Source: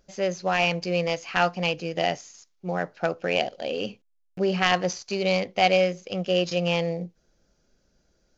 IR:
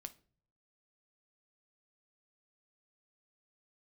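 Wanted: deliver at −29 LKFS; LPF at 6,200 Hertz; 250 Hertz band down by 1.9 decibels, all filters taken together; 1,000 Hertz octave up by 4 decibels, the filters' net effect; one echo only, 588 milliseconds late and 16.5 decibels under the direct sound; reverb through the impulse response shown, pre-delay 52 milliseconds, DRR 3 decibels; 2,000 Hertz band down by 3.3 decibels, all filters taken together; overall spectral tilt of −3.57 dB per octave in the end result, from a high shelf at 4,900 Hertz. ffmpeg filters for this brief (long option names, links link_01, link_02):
-filter_complex "[0:a]lowpass=6200,equalizer=frequency=250:width_type=o:gain=-4,equalizer=frequency=1000:width_type=o:gain=8,equalizer=frequency=2000:width_type=o:gain=-5.5,highshelf=frequency=4900:gain=-4.5,aecho=1:1:588:0.15,asplit=2[link_01][link_02];[1:a]atrim=start_sample=2205,adelay=52[link_03];[link_02][link_03]afir=irnorm=-1:irlink=0,volume=2dB[link_04];[link_01][link_04]amix=inputs=2:normalize=0,volume=-6dB"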